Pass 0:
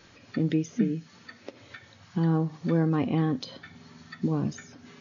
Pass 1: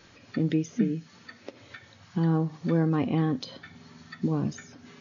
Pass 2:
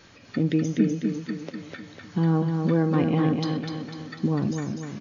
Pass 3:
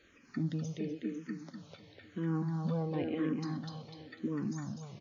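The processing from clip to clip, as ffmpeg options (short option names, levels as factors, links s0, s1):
-af anull
-af "aecho=1:1:249|498|747|996|1245|1494|1743:0.562|0.292|0.152|0.0791|0.0411|0.0214|0.0111,volume=1.33"
-filter_complex "[0:a]asplit=2[s0][s1];[s1]afreqshift=-0.96[s2];[s0][s2]amix=inputs=2:normalize=1,volume=0.376"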